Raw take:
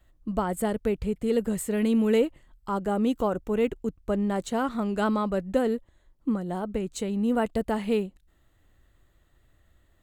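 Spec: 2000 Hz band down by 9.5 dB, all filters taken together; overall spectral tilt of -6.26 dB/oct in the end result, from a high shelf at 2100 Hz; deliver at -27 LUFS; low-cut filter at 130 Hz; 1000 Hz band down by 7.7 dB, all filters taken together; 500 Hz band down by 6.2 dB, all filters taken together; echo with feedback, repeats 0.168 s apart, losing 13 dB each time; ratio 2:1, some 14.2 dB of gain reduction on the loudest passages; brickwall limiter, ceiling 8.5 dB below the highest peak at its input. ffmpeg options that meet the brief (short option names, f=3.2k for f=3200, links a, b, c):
-af "highpass=130,equalizer=f=500:t=o:g=-5.5,equalizer=f=1k:t=o:g=-5,equalizer=f=2k:t=o:g=-6.5,highshelf=f=2.1k:g=-7.5,acompressor=threshold=-50dB:ratio=2,alimiter=level_in=14.5dB:limit=-24dB:level=0:latency=1,volume=-14.5dB,aecho=1:1:168|336|504:0.224|0.0493|0.0108,volume=20dB"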